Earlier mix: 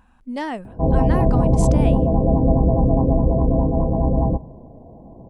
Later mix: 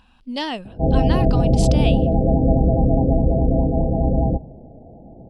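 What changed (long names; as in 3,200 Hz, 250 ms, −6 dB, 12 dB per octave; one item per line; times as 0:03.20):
background: add Butterworth low-pass 860 Hz 96 dB per octave
master: add flat-topped bell 3,700 Hz +13 dB 1.2 octaves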